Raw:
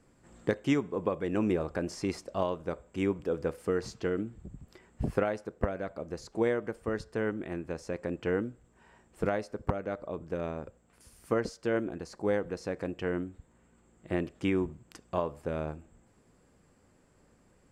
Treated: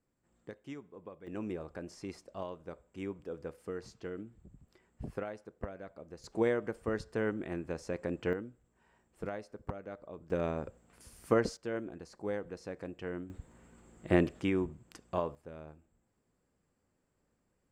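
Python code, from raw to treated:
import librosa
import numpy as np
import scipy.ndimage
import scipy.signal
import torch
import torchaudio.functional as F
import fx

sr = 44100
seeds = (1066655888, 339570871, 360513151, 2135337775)

y = fx.gain(x, sr, db=fx.steps((0.0, -18.0), (1.27, -10.5), (6.24, -1.5), (8.33, -9.5), (10.3, 1.5), (11.57, -7.5), (13.3, 5.0), (14.41, -2.5), (15.35, -14.0)))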